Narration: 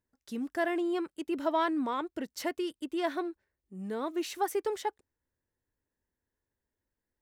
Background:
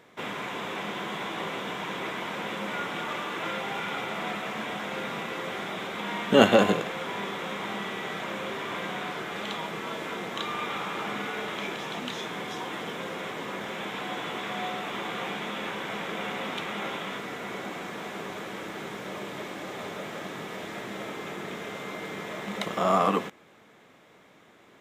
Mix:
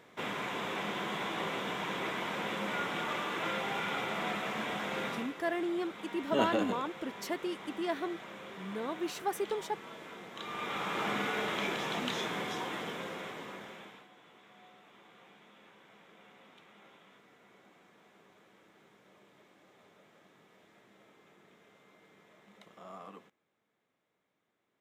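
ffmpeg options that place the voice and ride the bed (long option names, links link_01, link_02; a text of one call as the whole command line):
ffmpeg -i stem1.wav -i stem2.wav -filter_complex "[0:a]adelay=4850,volume=-3dB[link_01];[1:a]volume=10dB,afade=type=out:start_time=5.07:duration=0.26:silence=0.298538,afade=type=in:start_time=10.34:duration=0.73:silence=0.237137,afade=type=out:start_time=12.22:duration=1.86:silence=0.0562341[link_02];[link_01][link_02]amix=inputs=2:normalize=0" out.wav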